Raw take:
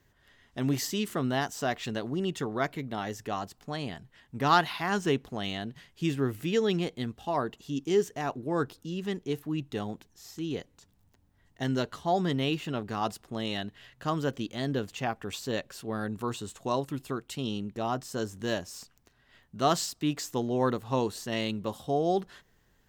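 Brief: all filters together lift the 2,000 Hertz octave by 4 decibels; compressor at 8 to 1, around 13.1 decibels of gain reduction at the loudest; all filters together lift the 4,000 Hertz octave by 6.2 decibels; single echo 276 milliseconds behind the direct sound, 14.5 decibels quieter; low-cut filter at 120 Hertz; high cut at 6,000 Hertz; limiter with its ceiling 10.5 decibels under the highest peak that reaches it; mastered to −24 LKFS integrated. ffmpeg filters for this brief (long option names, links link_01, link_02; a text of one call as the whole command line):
ffmpeg -i in.wav -af "highpass=120,lowpass=6000,equalizer=frequency=2000:width_type=o:gain=3.5,equalizer=frequency=4000:width_type=o:gain=7.5,acompressor=threshold=-28dB:ratio=8,alimiter=level_in=1.5dB:limit=-24dB:level=0:latency=1,volume=-1.5dB,aecho=1:1:276:0.188,volume=13.5dB" out.wav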